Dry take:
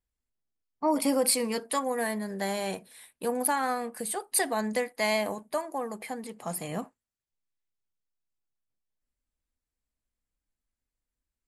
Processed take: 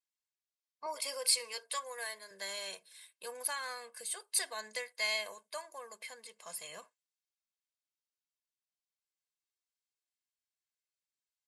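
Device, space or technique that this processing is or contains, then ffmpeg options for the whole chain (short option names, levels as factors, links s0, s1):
piezo pickup straight into a mixer: -filter_complex "[0:a]asettb=1/sr,asplit=3[s0][s1][s2];[s0]atrim=end=0.864[s3];[s1]atrim=start=0.86:end=2.31,asetpts=PTS-STARTPTS,afade=t=in:d=0.004:c=qsin,afade=t=out:st=1.446:d=0.004:c=qsin,highpass=350[s4];[s2]atrim=start=2.306[s5];[s3][s4]acrossfade=d=0.004:c1=hsin:c2=qsin[s6];[s6][s5]acrossfade=d=0.004:c1=qsin:c2=hsin,lowpass=5200,aderivative,aecho=1:1:1.9:0.67,volume=1.58"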